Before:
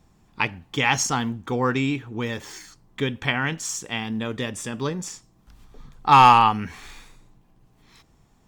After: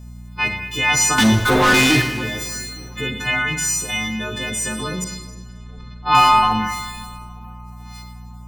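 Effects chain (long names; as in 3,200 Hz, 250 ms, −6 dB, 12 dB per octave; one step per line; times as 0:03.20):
every partial snapped to a pitch grid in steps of 3 semitones
transient designer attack −3 dB, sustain +7 dB
reverb reduction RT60 0.73 s
0:05.04–0:06.15: Butterworth low-pass 4,700 Hz 36 dB per octave
in parallel at +1 dB: downward compressor, threshold −30 dBFS, peak gain reduction 20 dB
0:01.18–0:02.02: on the sum: leveller curve on the samples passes 5
hum with harmonics 60 Hz, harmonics 4, −34 dBFS −7 dB per octave
on a send: feedback echo with a low-pass in the loop 432 ms, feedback 69%, low-pass 2,000 Hz, level −23 dB
on the sum: four-comb reverb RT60 1.1 s, combs from 33 ms, DRR 4.5 dB
level −3.5 dB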